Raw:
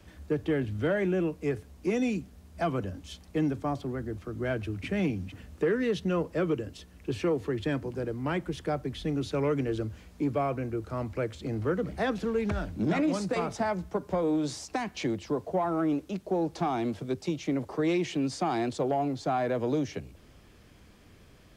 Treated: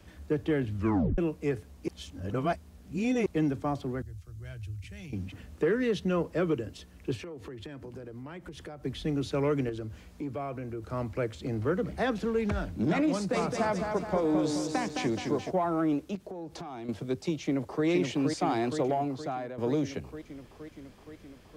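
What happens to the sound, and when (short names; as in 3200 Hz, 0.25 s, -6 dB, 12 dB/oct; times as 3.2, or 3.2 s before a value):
0.76 tape stop 0.42 s
1.88–3.26 reverse
4.02–5.13 EQ curve 100 Hz 0 dB, 240 Hz -24 dB, 1100 Hz -19 dB, 3300 Hz -9 dB, 6500 Hz -2 dB
7.15–8.85 compressor 8:1, threshold -39 dBFS
9.69–10.83 compressor 2:1, threshold -37 dBFS
13.12–15.51 warbling echo 0.212 s, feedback 52%, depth 62 cents, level -5 dB
16.15–16.89 compressor 8:1, threshold -37 dBFS
17.43–17.86 echo throw 0.47 s, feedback 75%, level -4 dB
18.88–19.58 fade out linear, to -14 dB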